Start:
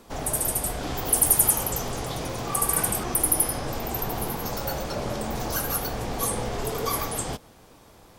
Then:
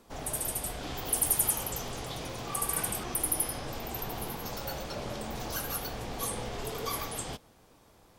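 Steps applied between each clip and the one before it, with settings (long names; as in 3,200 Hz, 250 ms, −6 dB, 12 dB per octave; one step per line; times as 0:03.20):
dynamic equaliser 3,200 Hz, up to +5 dB, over −44 dBFS, Q 0.97
level −8 dB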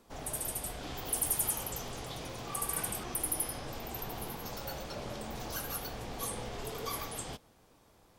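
hard clipping −19.5 dBFS, distortion −20 dB
level −3.5 dB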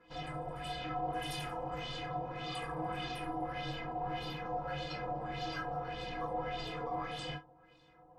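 auto-filter low-pass sine 1.7 Hz 800–3,900 Hz
stiff-string resonator 150 Hz, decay 0.2 s, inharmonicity 0.03
reverb whose tail is shaped and stops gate 80 ms falling, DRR 3 dB
level +7.5 dB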